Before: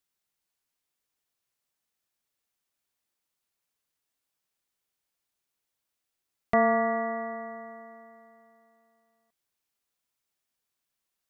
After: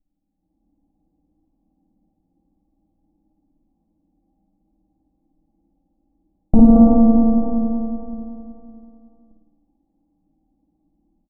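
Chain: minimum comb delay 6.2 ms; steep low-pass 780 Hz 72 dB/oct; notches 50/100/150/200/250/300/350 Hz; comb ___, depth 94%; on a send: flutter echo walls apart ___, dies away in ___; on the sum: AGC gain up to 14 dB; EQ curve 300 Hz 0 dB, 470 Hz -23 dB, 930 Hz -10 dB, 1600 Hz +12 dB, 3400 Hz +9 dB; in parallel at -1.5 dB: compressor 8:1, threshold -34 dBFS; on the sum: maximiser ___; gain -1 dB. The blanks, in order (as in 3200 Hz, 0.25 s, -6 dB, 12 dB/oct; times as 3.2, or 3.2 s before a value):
3.7 ms, 9.3 m, 0.95 s, +15.5 dB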